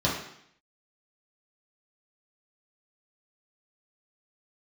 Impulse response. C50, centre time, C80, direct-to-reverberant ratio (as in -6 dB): 4.0 dB, 43 ms, 7.0 dB, -7.0 dB